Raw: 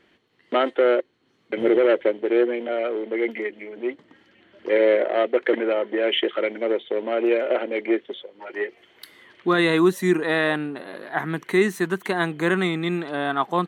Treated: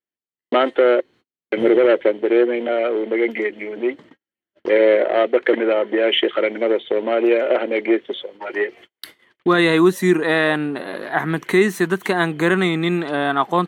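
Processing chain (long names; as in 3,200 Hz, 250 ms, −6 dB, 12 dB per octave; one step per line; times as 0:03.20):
noise gate −47 dBFS, range −45 dB
in parallel at 0 dB: downward compressor 6 to 1, threshold −28 dBFS, peak gain reduction 14 dB
on the sum: level +2 dB
AAC 96 kbit/s 44,100 Hz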